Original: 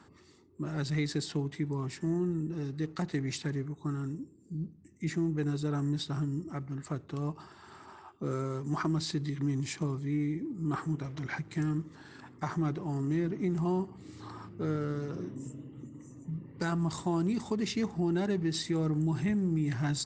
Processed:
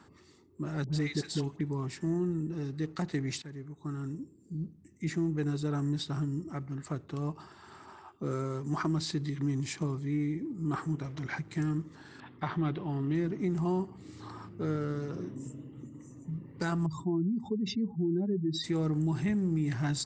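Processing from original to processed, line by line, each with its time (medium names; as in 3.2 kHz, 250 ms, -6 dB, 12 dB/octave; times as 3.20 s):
0.84–1.61 s: phase dispersion highs, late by 89 ms, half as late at 910 Hz
3.42–4.20 s: fade in linear, from -13.5 dB
12.20–13.15 s: resonant high shelf 4.9 kHz -13 dB, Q 3
16.86–18.64 s: spectral contrast enhancement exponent 2.2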